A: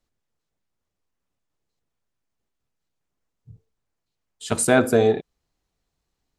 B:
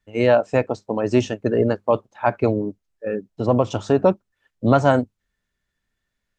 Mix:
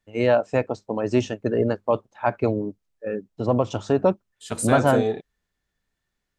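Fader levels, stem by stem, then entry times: -6.0, -3.0 dB; 0.00, 0.00 s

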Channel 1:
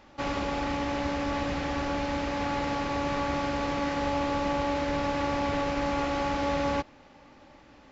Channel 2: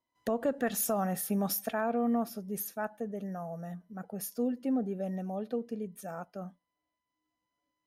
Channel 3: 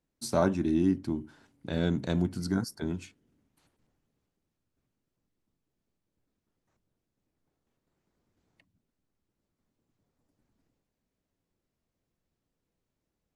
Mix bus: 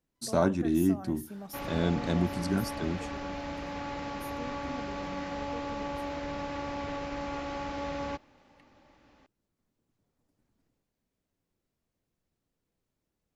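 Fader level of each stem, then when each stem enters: -7.5, -12.5, 0.0 dB; 1.35, 0.00, 0.00 s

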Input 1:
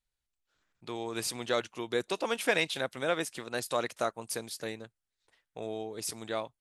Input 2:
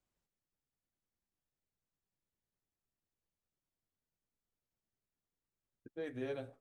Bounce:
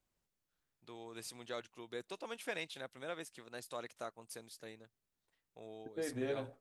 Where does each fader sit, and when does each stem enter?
-13.5, +2.5 dB; 0.00, 0.00 s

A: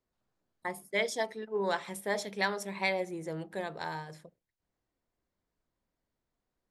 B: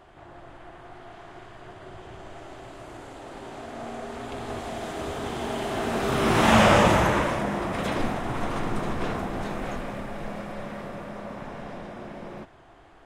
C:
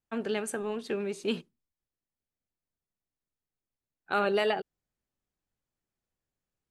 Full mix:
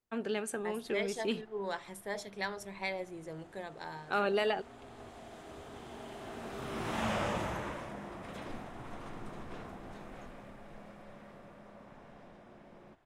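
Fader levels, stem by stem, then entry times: -6.5, -16.5, -3.5 dB; 0.00, 0.50, 0.00 s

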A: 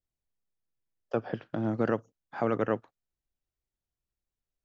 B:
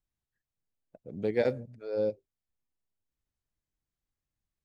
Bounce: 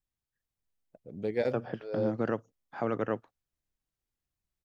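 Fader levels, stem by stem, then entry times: -3.0, -2.5 dB; 0.40, 0.00 s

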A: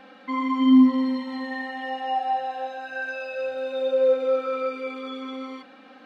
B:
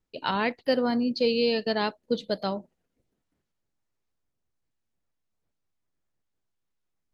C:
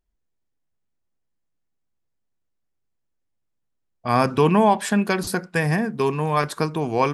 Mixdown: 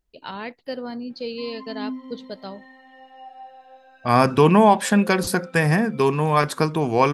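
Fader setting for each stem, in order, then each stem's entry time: -16.5, -6.5, +2.5 dB; 1.10, 0.00, 0.00 s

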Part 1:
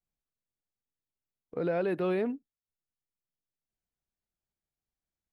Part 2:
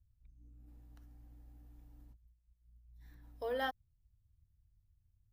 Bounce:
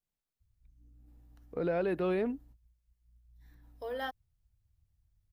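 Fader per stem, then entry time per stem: -1.5, -1.0 dB; 0.00, 0.40 s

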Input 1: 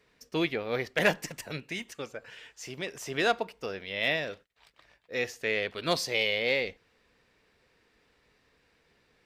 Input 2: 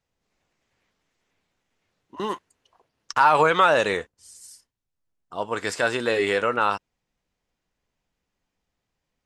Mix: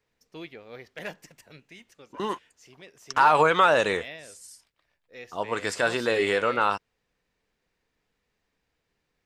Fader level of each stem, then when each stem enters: -12.5, -1.5 dB; 0.00, 0.00 s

